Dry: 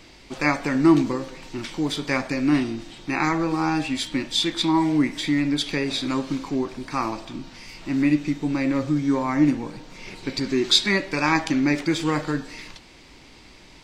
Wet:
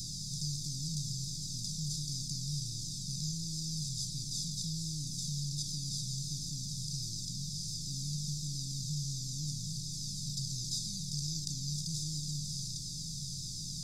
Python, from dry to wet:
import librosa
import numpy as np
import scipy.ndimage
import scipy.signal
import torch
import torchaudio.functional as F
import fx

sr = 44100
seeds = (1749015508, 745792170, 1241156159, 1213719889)

y = fx.bin_compress(x, sr, power=0.2)
y = scipy.signal.sosfilt(scipy.signal.cheby1(4, 1.0, [160.0, 5400.0], 'bandstop', fs=sr, output='sos'), y)
y = fx.comb_cascade(y, sr, direction='falling', hz=1.4)
y = y * librosa.db_to_amplitude(-7.5)